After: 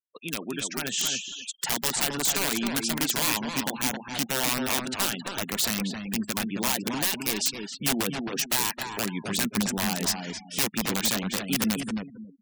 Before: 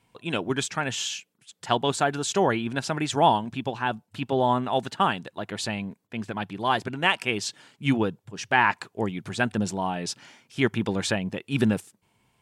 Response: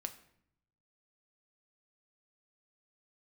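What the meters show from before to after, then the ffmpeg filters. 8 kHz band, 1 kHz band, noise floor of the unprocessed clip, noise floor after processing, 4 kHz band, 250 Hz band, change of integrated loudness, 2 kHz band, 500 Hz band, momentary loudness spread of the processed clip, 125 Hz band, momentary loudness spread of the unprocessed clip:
+8.5 dB, -8.5 dB, -72 dBFS, -49 dBFS, +3.5 dB, -1.5 dB, -0.5 dB, -3.0 dB, -7.5 dB, 7 LU, -5.5 dB, 12 LU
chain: -filter_complex "[0:a]acompressor=threshold=-38dB:ratio=2.5,highpass=f=150:w=0.5412,highpass=f=150:w=1.3066,agate=range=-26dB:threshold=-59dB:ratio=16:detection=peak,dynaudnorm=f=630:g=3:m=5dB,aeval=exprs='(mod(16.8*val(0)+1,2)-1)/16.8':c=same,highshelf=f=2k:g=7,crystalizer=i=0.5:c=0,adynamicequalizer=threshold=0.00355:dfrequency=230:dqfactor=1.7:tfrequency=230:tqfactor=1.7:attack=5:release=100:ratio=0.375:range=3:mode=boostabove:tftype=bell,asplit=2[a][b];[b]adelay=267,lowpass=f=2.7k:p=1,volume=-4dB,asplit=2[c][d];[d]adelay=267,lowpass=f=2.7k:p=1,volume=0.28,asplit=2[e][f];[f]adelay=267,lowpass=f=2.7k:p=1,volume=0.28,asplit=2[g][h];[h]adelay=267,lowpass=f=2.7k:p=1,volume=0.28[i];[c][e][g][i]amix=inputs=4:normalize=0[j];[a][j]amix=inputs=2:normalize=0,afftfilt=real='re*gte(hypot(re,im),0.0141)':imag='im*gte(hypot(re,im),0.0141)':win_size=1024:overlap=0.75"

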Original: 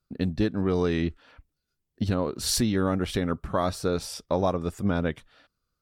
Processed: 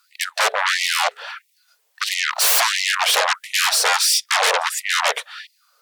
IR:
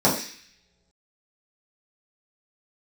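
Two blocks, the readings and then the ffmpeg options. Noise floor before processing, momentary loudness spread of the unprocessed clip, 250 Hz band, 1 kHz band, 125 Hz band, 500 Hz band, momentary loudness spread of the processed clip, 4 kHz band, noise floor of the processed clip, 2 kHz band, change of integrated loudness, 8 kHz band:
-82 dBFS, 6 LU, under -35 dB, +12.5 dB, under -40 dB, -1.0 dB, 12 LU, +17.0 dB, -65 dBFS, +20.0 dB, +9.5 dB, +15.5 dB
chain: -af "aeval=exprs='0.237*sin(PI/2*10*val(0)/0.237)':c=same,afftfilt=real='re*gte(b*sr/1024,390*pow(1900/390,0.5+0.5*sin(2*PI*1.5*pts/sr)))':imag='im*gte(b*sr/1024,390*pow(1900/390,0.5+0.5*sin(2*PI*1.5*pts/sr)))':win_size=1024:overlap=0.75"

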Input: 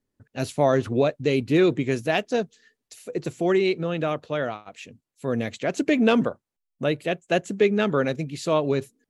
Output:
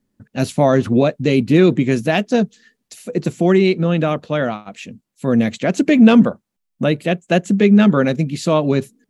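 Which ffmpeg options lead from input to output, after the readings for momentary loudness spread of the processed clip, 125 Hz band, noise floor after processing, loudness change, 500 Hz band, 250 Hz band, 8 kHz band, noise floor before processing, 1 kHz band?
13 LU, +10.5 dB, -75 dBFS, +8.0 dB, +5.5 dB, +11.0 dB, n/a, -83 dBFS, +5.5 dB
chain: -filter_complex "[0:a]equalizer=f=200:w=2.2:g=10.5,bandreject=f=430:w=14,asplit=2[a][b];[b]alimiter=limit=-13.5dB:level=0:latency=1:release=191,volume=-3dB[c];[a][c]amix=inputs=2:normalize=0,volume=2dB"

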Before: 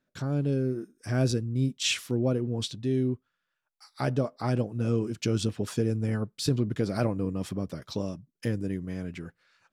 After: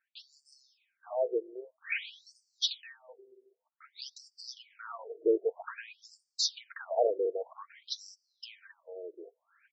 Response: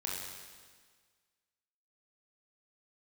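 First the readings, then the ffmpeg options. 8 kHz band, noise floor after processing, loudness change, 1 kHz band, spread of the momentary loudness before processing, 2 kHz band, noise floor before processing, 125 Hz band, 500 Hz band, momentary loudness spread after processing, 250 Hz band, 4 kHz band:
-5.0 dB, -85 dBFS, -5.0 dB, -2.0 dB, 8 LU, -3.0 dB, -82 dBFS, under -40 dB, -1.5 dB, 23 LU, -17.0 dB, -1.0 dB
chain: -filter_complex "[0:a]aecho=1:1:4.4:0.35,dynaudnorm=f=220:g=17:m=4dB,asplit=2[a][b];[b]asplit=3[c][d][e];[c]bandpass=f=270:t=q:w=8,volume=0dB[f];[d]bandpass=f=2.29k:t=q:w=8,volume=-6dB[g];[e]bandpass=f=3.01k:t=q:w=8,volume=-9dB[h];[f][g][h]amix=inputs=3:normalize=0[i];[1:a]atrim=start_sample=2205[j];[i][j]afir=irnorm=-1:irlink=0,volume=-6.5dB[k];[a][k]amix=inputs=2:normalize=0,afftfilt=real='re*between(b*sr/1024,450*pow(6400/450,0.5+0.5*sin(2*PI*0.52*pts/sr))/1.41,450*pow(6400/450,0.5+0.5*sin(2*PI*0.52*pts/sr))*1.41)':imag='im*between(b*sr/1024,450*pow(6400/450,0.5+0.5*sin(2*PI*0.52*pts/sr))/1.41,450*pow(6400/450,0.5+0.5*sin(2*PI*0.52*pts/sr))*1.41)':win_size=1024:overlap=0.75,volume=1.5dB"

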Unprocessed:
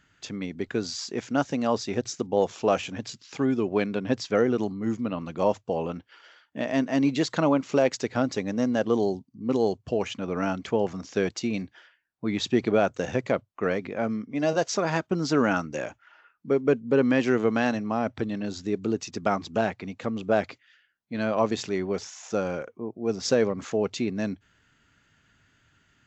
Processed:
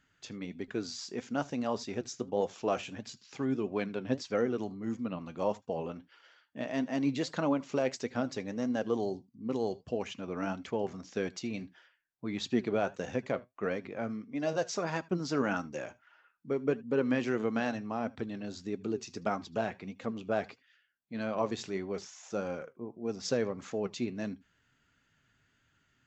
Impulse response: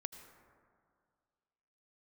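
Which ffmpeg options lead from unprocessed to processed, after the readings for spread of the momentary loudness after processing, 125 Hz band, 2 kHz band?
10 LU, -8.0 dB, -7.5 dB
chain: -filter_complex "[1:a]atrim=start_sample=2205,atrim=end_sample=3528[a];[0:a][a]afir=irnorm=-1:irlink=0,flanger=delay=3.7:depth=4.6:regen=71:speed=1.6:shape=sinusoidal"

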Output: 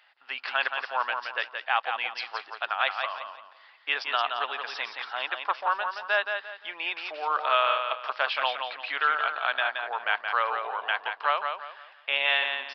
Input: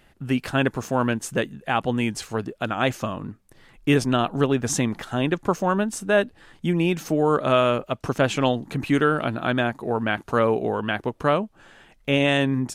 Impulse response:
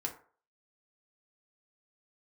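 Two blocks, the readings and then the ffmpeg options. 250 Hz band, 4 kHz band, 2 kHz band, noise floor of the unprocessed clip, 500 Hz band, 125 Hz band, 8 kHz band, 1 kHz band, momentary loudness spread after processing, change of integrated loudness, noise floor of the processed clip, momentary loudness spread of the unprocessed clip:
under -35 dB, +1.0 dB, +1.0 dB, -57 dBFS, -12.5 dB, under -40 dB, under -25 dB, -0.5 dB, 10 LU, -4.5 dB, -56 dBFS, 8 LU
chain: -af "highpass=f=820:w=0.5412,highpass=f=820:w=1.3066,aecho=1:1:173|346|519|692:0.501|0.155|0.0482|0.0149,aresample=11025,aresample=44100"

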